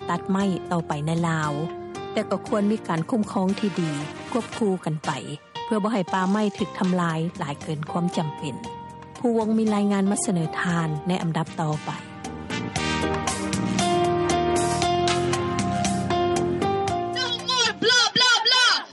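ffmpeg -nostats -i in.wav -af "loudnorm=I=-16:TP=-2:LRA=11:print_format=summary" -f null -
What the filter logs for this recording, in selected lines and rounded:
Input Integrated:    -22.7 LUFS
Input True Peak:      -6.9 dBTP
Input LRA:             6.0 LU
Input Threshold:     -32.9 LUFS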